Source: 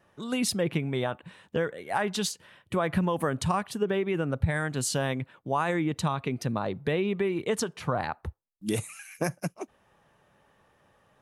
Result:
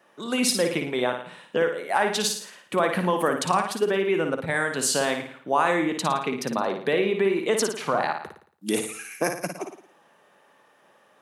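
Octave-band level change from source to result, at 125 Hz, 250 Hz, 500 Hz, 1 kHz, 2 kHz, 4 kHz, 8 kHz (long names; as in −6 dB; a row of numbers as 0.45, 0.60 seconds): −5.5, +2.0, +5.5, +6.5, +6.5, +6.5, +6.5 decibels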